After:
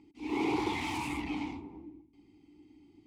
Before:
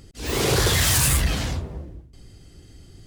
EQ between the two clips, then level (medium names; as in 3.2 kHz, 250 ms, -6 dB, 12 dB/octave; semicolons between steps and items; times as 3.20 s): peaking EQ 140 Hz -5 dB 0.6 oct; dynamic bell 810 Hz, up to +4 dB, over -35 dBFS, Q 0.91; vowel filter u; +3.5 dB